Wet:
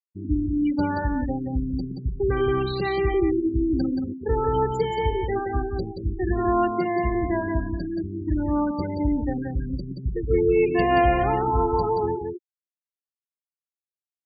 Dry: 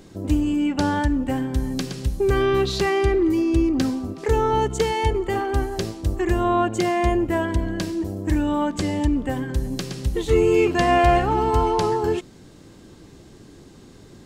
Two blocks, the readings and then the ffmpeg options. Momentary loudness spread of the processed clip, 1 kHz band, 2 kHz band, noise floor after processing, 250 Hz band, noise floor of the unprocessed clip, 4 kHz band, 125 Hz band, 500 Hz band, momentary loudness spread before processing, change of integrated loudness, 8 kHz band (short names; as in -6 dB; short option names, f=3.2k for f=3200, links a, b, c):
9 LU, -2.5 dB, -4.0 dB, under -85 dBFS, -2.5 dB, -46 dBFS, -9.0 dB, -2.5 dB, -2.5 dB, 9 LU, -2.5 dB, under -20 dB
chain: -filter_complex "[0:a]afftfilt=real='re*gte(hypot(re,im),0.112)':imag='im*gte(hypot(re,im),0.112)':win_size=1024:overlap=0.75,asplit=2[a][b];[b]aecho=0:1:177:0.531[c];[a][c]amix=inputs=2:normalize=0,volume=-3.5dB"